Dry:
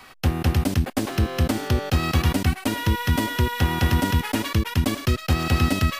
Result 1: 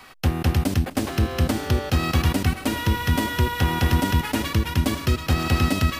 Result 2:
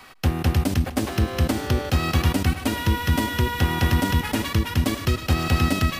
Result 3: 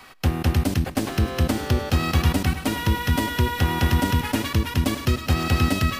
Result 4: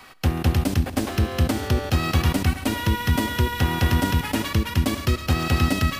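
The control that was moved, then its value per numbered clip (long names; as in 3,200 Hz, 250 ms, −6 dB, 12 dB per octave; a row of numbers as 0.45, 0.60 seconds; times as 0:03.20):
echo machine with several playback heads, delay time: 255, 154, 102, 69 milliseconds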